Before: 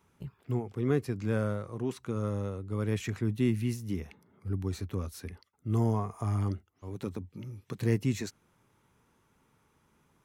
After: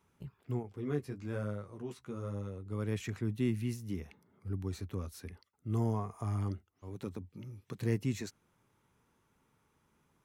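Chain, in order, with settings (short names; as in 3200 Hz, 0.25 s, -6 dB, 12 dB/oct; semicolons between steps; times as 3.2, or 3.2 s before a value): 0.63–2.66 flange 1.1 Hz, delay 9 ms, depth 5.9 ms, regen -15%; gain -4.5 dB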